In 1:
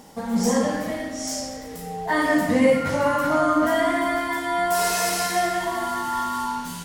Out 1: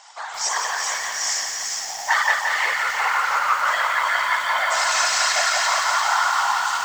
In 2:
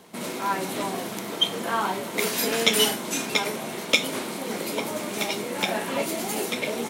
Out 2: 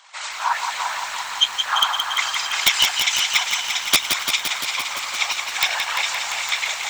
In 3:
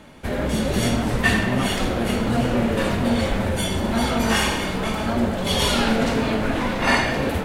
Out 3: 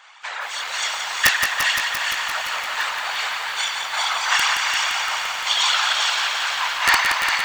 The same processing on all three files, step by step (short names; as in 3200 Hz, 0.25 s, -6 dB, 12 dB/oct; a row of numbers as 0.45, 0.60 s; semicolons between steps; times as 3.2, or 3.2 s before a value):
self-modulated delay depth 0.054 ms; steep low-pass 8000 Hz 72 dB/oct; reverb removal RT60 0.59 s; vocal rider within 3 dB 2 s; steep high-pass 900 Hz 36 dB/oct; thin delay 0.403 s, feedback 31%, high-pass 1700 Hz, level -4 dB; whisperiser; wrapped overs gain 10 dB; pump 124 bpm, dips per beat 1, -4 dB, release 0.148 s; lo-fi delay 0.172 s, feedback 80%, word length 8-bit, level -5.5 dB; match loudness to -20 LUFS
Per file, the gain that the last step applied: +6.5, +6.0, +4.5 dB